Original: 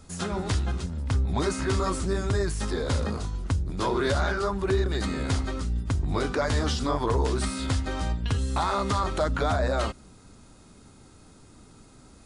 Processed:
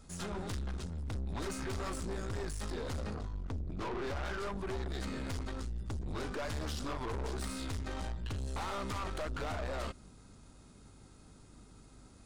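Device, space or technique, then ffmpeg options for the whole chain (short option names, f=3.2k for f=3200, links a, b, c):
valve amplifier with mains hum: -filter_complex "[0:a]asettb=1/sr,asplit=3[a][b][c];[a]atrim=end=3.144[d];[b]atrim=start=3.14:end=4.25,asetpts=PTS-STARTPTS,afade=t=in:d=0.004:c=qsin,afade=t=out:st=1.106:d=0.004:c=qsin,aemphasis=mode=reproduction:type=75fm[e];[c]atrim=start=4.246[f];[d][e]acrossfade=d=0.004:c1=hsin:c2=qsin[g];[g][f]acrossfade=d=0.004:c1=qsin:c2=hsin,aeval=exprs='(tanh(35.5*val(0)+0.5)-tanh(0.5))/35.5':c=same,aeval=exprs='val(0)+0.00178*(sin(2*PI*50*n/s)+sin(2*PI*2*50*n/s)/2+sin(2*PI*3*50*n/s)/3+sin(2*PI*4*50*n/s)/4+sin(2*PI*5*50*n/s)/5)':c=same,volume=-4.5dB"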